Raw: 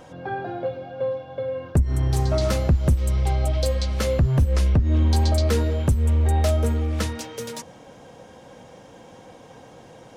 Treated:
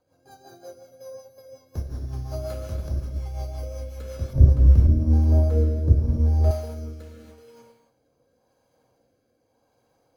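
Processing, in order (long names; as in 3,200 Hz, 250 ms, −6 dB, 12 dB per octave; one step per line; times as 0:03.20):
parametric band 180 Hz −9 dB 0.67 octaves
notch filter 1,900 Hz, Q 7.1
bad sample-rate conversion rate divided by 8×, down filtered, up hold
reverb whose tail is shaped and stops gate 310 ms flat, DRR −3 dB
rotating-speaker cabinet horn 5.5 Hz, later 0.85 Hz, at 0:04.30
0:04.33–0:06.51: tilt shelving filter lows +9 dB, about 680 Hz
expander for the loud parts 1.5 to 1, over −36 dBFS
level −6 dB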